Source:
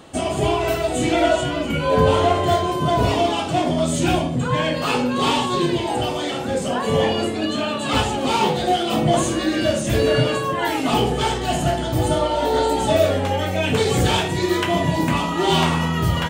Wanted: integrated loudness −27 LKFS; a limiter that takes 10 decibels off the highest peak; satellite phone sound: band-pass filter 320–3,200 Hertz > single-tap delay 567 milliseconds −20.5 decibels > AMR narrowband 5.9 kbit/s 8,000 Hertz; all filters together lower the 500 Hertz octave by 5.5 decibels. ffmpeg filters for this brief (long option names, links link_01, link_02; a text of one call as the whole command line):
ffmpeg -i in.wav -af "equalizer=frequency=500:width_type=o:gain=-6.5,alimiter=limit=-16.5dB:level=0:latency=1,highpass=320,lowpass=3200,aecho=1:1:567:0.0944,volume=4dB" -ar 8000 -c:a libopencore_amrnb -b:a 5900 out.amr